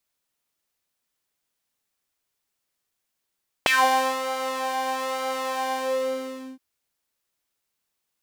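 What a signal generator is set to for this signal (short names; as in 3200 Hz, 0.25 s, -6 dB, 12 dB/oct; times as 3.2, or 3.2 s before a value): synth patch with pulse-width modulation C4, interval 0 st, sub -27 dB, filter highpass, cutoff 270 Hz, Q 4.5, filter envelope 3.5 oct, filter decay 0.18 s, attack 1.3 ms, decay 0.53 s, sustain -10 dB, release 0.88 s, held 2.04 s, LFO 1.1 Hz, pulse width 35%, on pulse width 5%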